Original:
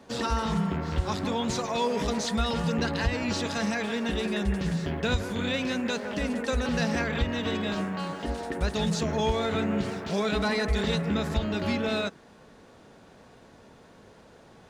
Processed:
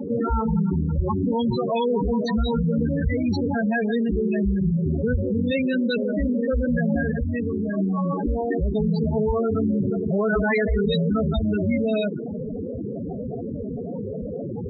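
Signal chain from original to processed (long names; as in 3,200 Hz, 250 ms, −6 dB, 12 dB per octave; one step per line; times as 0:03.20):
0:10.19–0:11.39: parametric band 1,400 Hz +7.5 dB 2.8 octaves
rotating-speaker cabinet horn 5 Hz
0:07.11–0:07.77: tuned comb filter 87 Hz, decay 0.76 s, harmonics all, mix 70%
spectral peaks only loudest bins 8
0:04.13–0:04.77: comb filter 6.1 ms, depth 32%
envelope flattener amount 70%
level +2.5 dB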